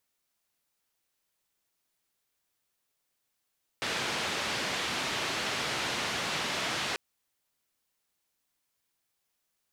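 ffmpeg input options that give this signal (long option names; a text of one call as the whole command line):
ffmpeg -f lavfi -i "anoisesrc=color=white:duration=3.14:sample_rate=44100:seed=1,highpass=frequency=99,lowpass=frequency=3700,volume=-20.2dB" out.wav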